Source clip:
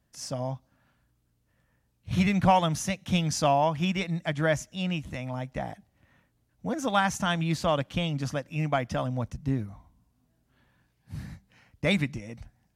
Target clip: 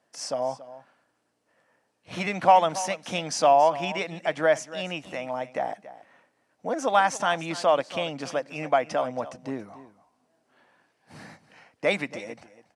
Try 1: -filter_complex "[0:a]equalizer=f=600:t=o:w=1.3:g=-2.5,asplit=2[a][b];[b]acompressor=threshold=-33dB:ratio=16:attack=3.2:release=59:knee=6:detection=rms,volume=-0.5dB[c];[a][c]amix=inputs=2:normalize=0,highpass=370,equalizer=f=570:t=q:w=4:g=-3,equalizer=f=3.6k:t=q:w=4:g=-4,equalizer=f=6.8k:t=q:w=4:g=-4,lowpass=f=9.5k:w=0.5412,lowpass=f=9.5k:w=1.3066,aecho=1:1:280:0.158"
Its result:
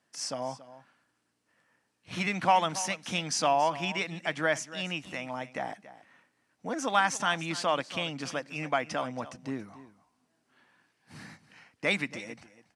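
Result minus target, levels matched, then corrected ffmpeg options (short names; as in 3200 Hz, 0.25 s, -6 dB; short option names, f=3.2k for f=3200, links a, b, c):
500 Hz band -3.5 dB
-filter_complex "[0:a]equalizer=f=600:t=o:w=1.3:g=7.5,asplit=2[a][b];[b]acompressor=threshold=-33dB:ratio=16:attack=3.2:release=59:knee=6:detection=rms,volume=-0.5dB[c];[a][c]amix=inputs=2:normalize=0,highpass=370,equalizer=f=570:t=q:w=4:g=-3,equalizer=f=3.6k:t=q:w=4:g=-4,equalizer=f=6.8k:t=q:w=4:g=-4,lowpass=f=9.5k:w=0.5412,lowpass=f=9.5k:w=1.3066,aecho=1:1:280:0.158"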